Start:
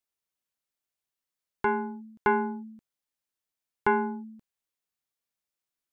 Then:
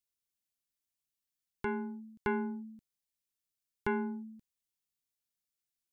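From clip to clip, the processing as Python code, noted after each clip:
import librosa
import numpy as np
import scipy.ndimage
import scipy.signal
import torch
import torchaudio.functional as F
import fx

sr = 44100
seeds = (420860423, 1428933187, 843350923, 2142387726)

y = fx.peak_eq(x, sr, hz=870.0, db=-13.0, octaves=2.6)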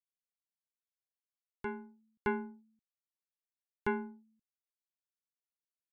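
y = fx.upward_expand(x, sr, threshold_db=-45.0, expansion=2.5)
y = y * librosa.db_to_amplitude(1.5)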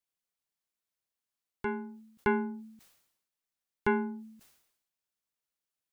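y = fx.sustainer(x, sr, db_per_s=67.0)
y = y * librosa.db_to_amplitude(5.0)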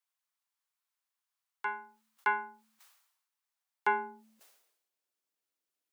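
y = fx.filter_sweep_highpass(x, sr, from_hz=990.0, to_hz=300.0, start_s=3.38, end_s=5.36, q=1.7)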